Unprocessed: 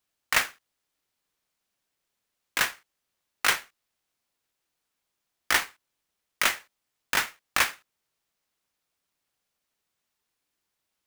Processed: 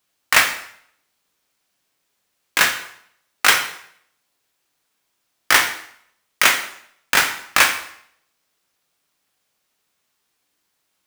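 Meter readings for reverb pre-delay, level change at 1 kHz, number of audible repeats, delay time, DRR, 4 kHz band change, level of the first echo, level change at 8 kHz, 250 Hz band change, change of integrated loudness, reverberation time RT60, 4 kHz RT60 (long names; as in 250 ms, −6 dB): 5 ms, +9.5 dB, no echo audible, no echo audible, 4.5 dB, +10.0 dB, no echo audible, +10.0 dB, +9.0 dB, +9.0 dB, 0.65 s, 0.60 s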